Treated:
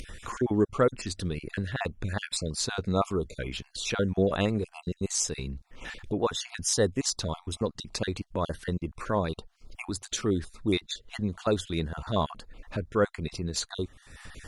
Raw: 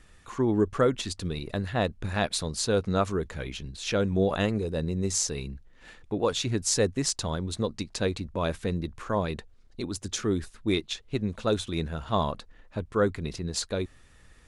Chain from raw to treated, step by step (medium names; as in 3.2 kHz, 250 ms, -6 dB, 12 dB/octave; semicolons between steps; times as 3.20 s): random holes in the spectrogram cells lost 28%; upward compressor, threshold -29 dBFS; Opus 96 kbps 48 kHz